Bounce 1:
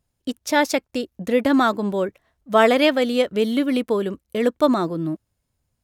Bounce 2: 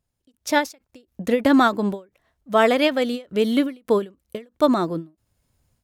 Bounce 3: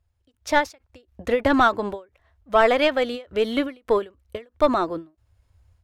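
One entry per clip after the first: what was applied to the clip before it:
AGC gain up to 12 dB; ending taper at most 230 dB/s; gain -4 dB
overdrive pedal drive 9 dB, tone 2000 Hz, clips at -4.5 dBFS; resonant low shelf 120 Hz +12.5 dB, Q 3

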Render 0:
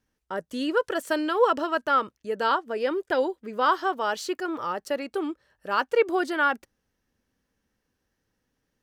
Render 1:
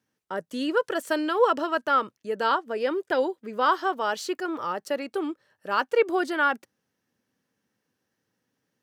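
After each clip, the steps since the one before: HPF 110 Hz 24 dB/oct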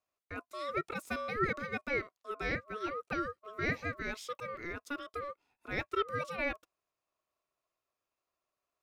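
ring modulator 860 Hz; gain -8.5 dB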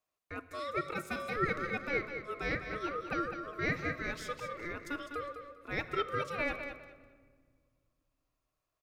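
on a send: feedback echo 0.203 s, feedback 22%, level -8.5 dB; on the sum: shoebox room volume 2700 m³, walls mixed, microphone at 0.53 m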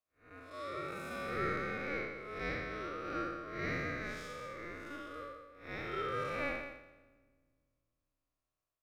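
time blur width 0.189 s; upward expander 1.5:1, over -51 dBFS; gain +2.5 dB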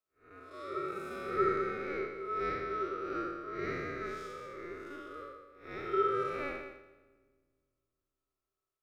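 small resonant body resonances 390/1300 Hz, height 18 dB, ringing for 95 ms; gain -3.5 dB

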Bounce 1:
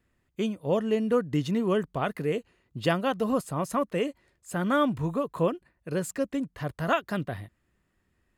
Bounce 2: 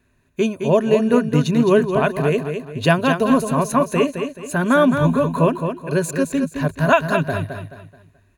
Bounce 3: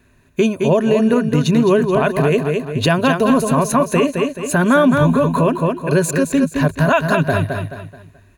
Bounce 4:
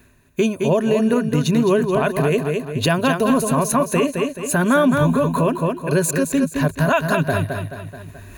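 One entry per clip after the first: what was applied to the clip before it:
ripple EQ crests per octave 1.5, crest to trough 10 dB; on a send: feedback echo 0.215 s, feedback 35%, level -7 dB; on the sum: gain +8.5 dB
in parallel at +0.5 dB: compressor, threshold -24 dBFS, peak gain reduction 14 dB; on the sum: limiter -7.5 dBFS, peak gain reduction 7 dB; gain +2 dB
high shelf 9600 Hz +10 dB; reverse; upward compressor, threshold -24 dBFS; reverse; gain -3 dB

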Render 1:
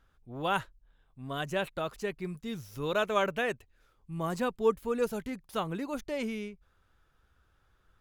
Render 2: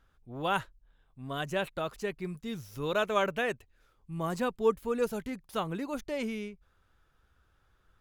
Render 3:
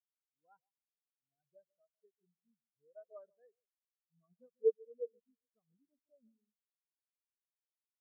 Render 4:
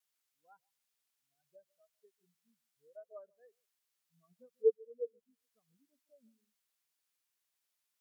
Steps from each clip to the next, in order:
nothing audible
echo with dull and thin repeats by turns 0.143 s, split 1200 Hz, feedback 64%, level -7 dB; spectral expander 4:1; gain -6 dB
vibrato 0.34 Hz 6.3 cents; mismatched tape noise reduction encoder only; gain +2 dB

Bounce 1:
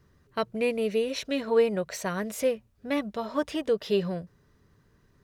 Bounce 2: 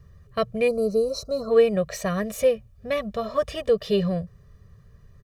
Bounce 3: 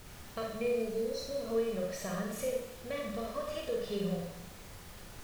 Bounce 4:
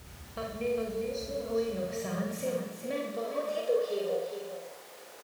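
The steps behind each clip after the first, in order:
spectral gain 0.68–1.5, 1500–3800 Hz -28 dB; low shelf 210 Hz +11.5 dB; comb 1.7 ms, depth 85%
compressor 2:1, threshold -37 dBFS, peak gain reduction 13.5 dB; added noise pink -48 dBFS; Schroeder reverb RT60 0.75 s, combs from 31 ms, DRR -1 dB; gain -6 dB
high-pass sweep 60 Hz -> 490 Hz, 1.51–3.54; on a send: echo 0.404 s -7.5 dB

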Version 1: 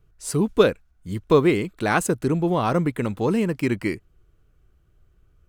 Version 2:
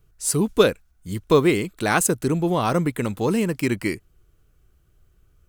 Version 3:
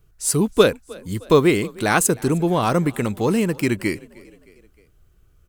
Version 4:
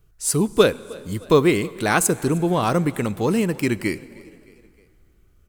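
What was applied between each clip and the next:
high shelf 4700 Hz +10.5 dB
frequency-shifting echo 0.309 s, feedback 52%, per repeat +31 Hz, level -23 dB; gain +2 dB
plate-style reverb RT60 2.7 s, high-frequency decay 0.9×, DRR 19.5 dB; gain -1 dB

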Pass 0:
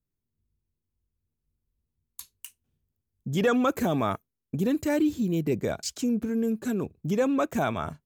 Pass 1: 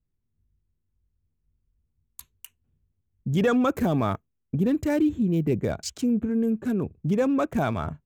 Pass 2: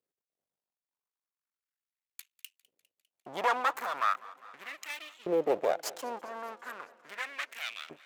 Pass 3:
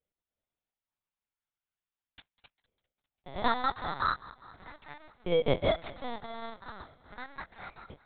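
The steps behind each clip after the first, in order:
Wiener smoothing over 9 samples; low shelf 160 Hz +9 dB
half-wave rectifier; LFO high-pass saw up 0.38 Hz 450–3100 Hz; warbling echo 0.201 s, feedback 70%, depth 93 cents, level -21.5 dB
FFT order left unsorted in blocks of 16 samples; LPC vocoder at 8 kHz pitch kept; gain +2 dB

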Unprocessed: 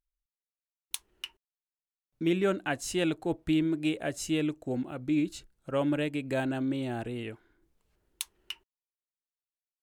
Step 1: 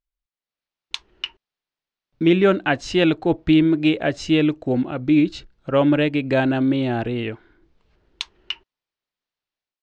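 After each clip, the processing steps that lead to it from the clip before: LPF 4900 Hz 24 dB/oct; AGC gain up to 11.5 dB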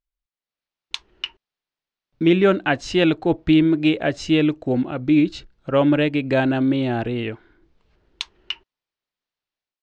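nothing audible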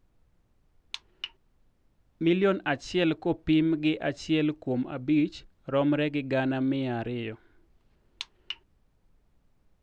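added noise brown -56 dBFS; gain -8 dB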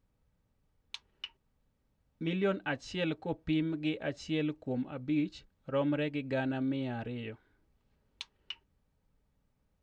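notch comb 350 Hz; gain -5 dB

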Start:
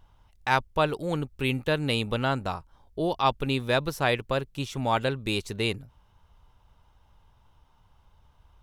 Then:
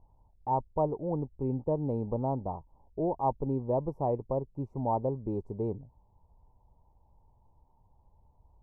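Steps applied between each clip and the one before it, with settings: elliptic low-pass 940 Hz, stop band 40 dB; gain -2.5 dB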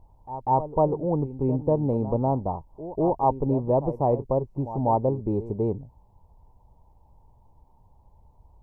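pre-echo 0.194 s -13.5 dB; gain +7 dB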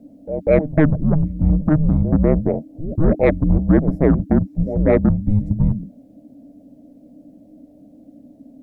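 sine folder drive 5 dB, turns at -8.5 dBFS; frequency shift -310 Hz; gain +1 dB

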